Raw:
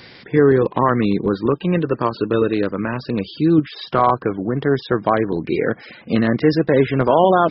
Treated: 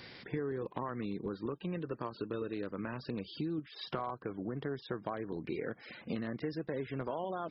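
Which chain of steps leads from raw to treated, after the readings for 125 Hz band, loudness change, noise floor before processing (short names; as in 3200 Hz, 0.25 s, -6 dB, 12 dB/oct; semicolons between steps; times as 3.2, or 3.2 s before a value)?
-20.0 dB, -21.0 dB, -43 dBFS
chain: compressor 6:1, threshold -26 dBFS, peak gain reduction 16.5 dB; gain -9 dB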